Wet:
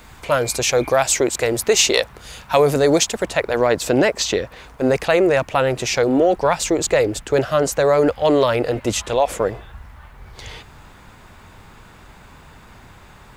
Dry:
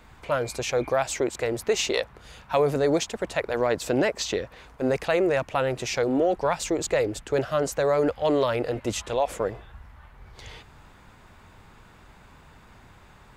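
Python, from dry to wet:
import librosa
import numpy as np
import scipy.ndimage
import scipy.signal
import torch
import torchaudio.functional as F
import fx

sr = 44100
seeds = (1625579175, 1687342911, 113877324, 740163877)

y = fx.high_shelf(x, sr, hz=4300.0, db=fx.steps((0.0, 9.5), (3.25, 2.5)))
y = fx.quant_dither(y, sr, seeds[0], bits=12, dither='none')
y = F.gain(torch.from_numpy(y), 7.0).numpy()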